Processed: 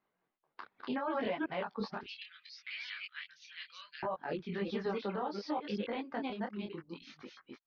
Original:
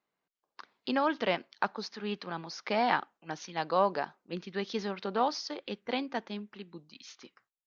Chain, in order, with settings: chunks repeated in reverse 180 ms, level -2 dB; 2.03–4.03 s: inverse Chebyshev high-pass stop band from 860 Hz, stop band 50 dB; compression 2:1, threshold -33 dBFS, peak gain reduction 7 dB; reverb removal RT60 0.74 s; peak limiter -29.5 dBFS, peak gain reduction 10.5 dB; distance through air 320 m; detune thickener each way 24 cents; trim +8 dB

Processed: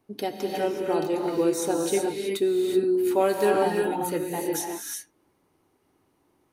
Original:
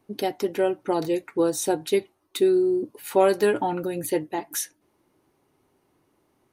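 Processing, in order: gated-style reverb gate 400 ms rising, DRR 0 dB; trim -3.5 dB

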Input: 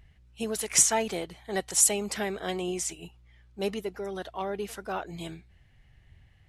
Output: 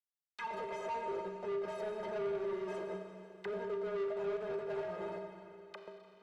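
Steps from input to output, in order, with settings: gate with hold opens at -47 dBFS; graphic EQ 250/1000/8000 Hz +9/+9/-5 dB; waveshaping leveller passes 3; reverse; compression 16:1, threshold -31 dBFS, peak gain reduction 19 dB; reverse; Schmitt trigger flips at -36 dBFS; inharmonic resonator 180 Hz, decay 0.39 s, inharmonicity 0.03; auto-wah 470–4900 Hz, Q 3.8, down, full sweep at -49 dBFS; overdrive pedal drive 23 dB, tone 4.2 kHz, clips at -43.5 dBFS; Schroeder reverb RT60 1.9 s, combs from 30 ms, DRR 5 dB; speed mistake 24 fps film run at 25 fps; three bands compressed up and down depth 40%; trim +11.5 dB

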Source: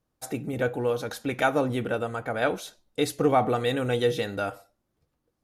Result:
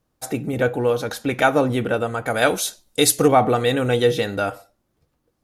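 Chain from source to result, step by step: 2.26–3.28 s: peaking EQ 10 kHz +13.5 dB 2.2 oct; trim +6.5 dB

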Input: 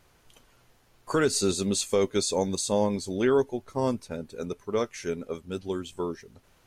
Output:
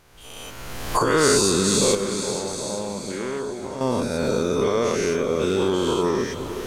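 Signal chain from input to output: every event in the spectrogram widened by 240 ms; recorder AGC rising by 30 dB/s; 1.95–3.81 s: feedback comb 200 Hz, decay 0.66 s, harmonics odd, mix 70%; echo that smears into a reverb 451 ms, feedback 52%, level -11 dB

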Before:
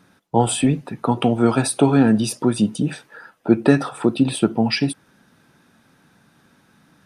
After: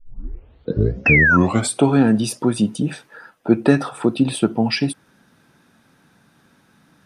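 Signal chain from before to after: tape start-up on the opening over 1.83 s; painted sound fall, 1.06–1.37 s, 1.3–2.7 kHz -14 dBFS

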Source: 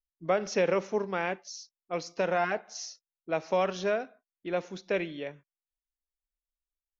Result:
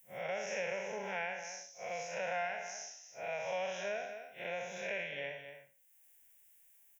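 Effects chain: spectral blur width 157 ms; tilt EQ +3.5 dB/octave; in parallel at +2 dB: compression, threshold -46 dBFS, peak gain reduction 17.5 dB; on the sum: static phaser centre 1.2 kHz, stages 6; feedback comb 140 Hz, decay 0.33 s, harmonics all, mix 40%; on a send: delay 218 ms -13 dB; on the sum: three bands compressed up and down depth 70%

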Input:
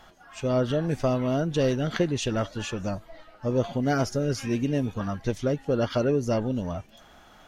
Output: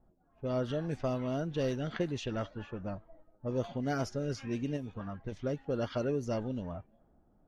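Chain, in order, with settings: level-controlled noise filter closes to 330 Hz, open at -20 dBFS; 4.76–5.32 s: compression, threshold -27 dBFS, peak gain reduction 6.5 dB; trim -8.5 dB

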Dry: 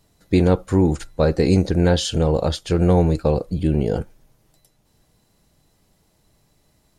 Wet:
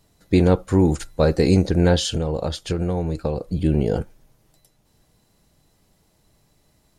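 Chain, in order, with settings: 0.79–1.51 s: treble shelf 5.7 kHz +5.5 dB; 2.11–3.54 s: compression 6:1, threshold -20 dBFS, peak gain reduction 9 dB

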